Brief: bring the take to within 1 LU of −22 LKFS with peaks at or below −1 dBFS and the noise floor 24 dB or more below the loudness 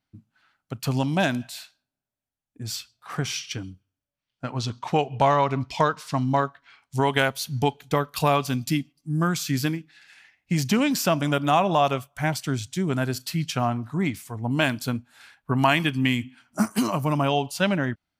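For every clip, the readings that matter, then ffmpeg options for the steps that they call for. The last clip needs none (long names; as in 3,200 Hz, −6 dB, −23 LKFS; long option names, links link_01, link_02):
integrated loudness −25.0 LKFS; sample peak −6.0 dBFS; target loudness −22.0 LKFS
→ -af "volume=3dB"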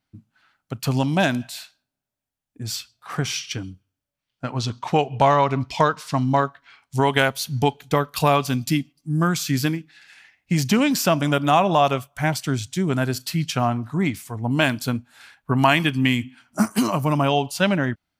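integrated loudness −22.0 LKFS; sample peak −3.0 dBFS; background noise floor −85 dBFS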